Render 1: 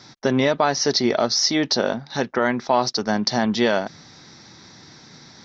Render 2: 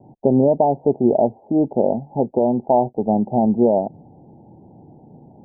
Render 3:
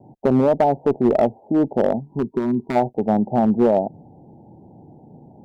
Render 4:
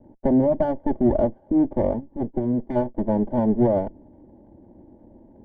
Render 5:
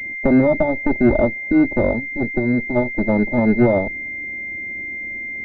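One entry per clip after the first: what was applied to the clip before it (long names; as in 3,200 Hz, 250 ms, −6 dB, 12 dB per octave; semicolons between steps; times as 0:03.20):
Butterworth low-pass 870 Hz 96 dB per octave; level +4.5 dB
asymmetric clip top −12 dBFS, bottom −7.5 dBFS; gain on a spectral selection 0:02.00–0:02.76, 440–930 Hz −18 dB
lower of the sound and its delayed copy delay 3.4 ms; moving average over 34 samples
switching amplifier with a slow clock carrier 2,100 Hz; level +4.5 dB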